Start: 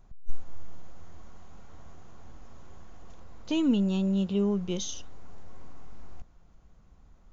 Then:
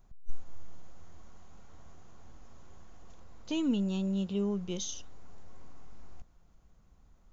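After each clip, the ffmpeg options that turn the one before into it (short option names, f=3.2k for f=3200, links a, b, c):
-af "highshelf=f=6.1k:g=7,volume=-5dB"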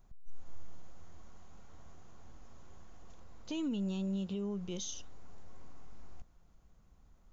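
-af "alimiter=level_in=4.5dB:limit=-24dB:level=0:latency=1:release=103,volume=-4.5dB,volume=-1.5dB"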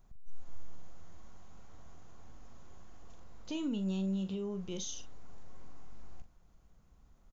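-filter_complex "[0:a]asplit=2[a][b];[b]adelay=42,volume=-10dB[c];[a][c]amix=inputs=2:normalize=0"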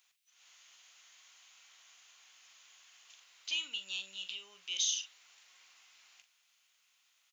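-af "highpass=f=2.7k:t=q:w=2.1,volume=8dB"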